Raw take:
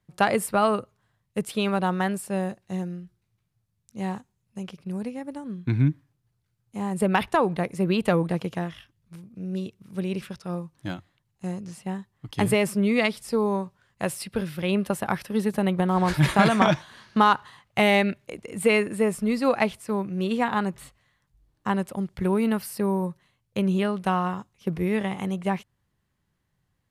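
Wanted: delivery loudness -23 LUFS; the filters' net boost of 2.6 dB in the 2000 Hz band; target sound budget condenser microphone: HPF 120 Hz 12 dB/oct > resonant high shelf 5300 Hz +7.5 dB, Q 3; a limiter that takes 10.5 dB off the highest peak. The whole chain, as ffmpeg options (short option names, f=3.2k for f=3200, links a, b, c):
-af "equalizer=f=2k:t=o:g=4.5,alimiter=limit=-14dB:level=0:latency=1,highpass=120,highshelf=f=5.3k:t=q:w=3:g=7.5,volume=4dB"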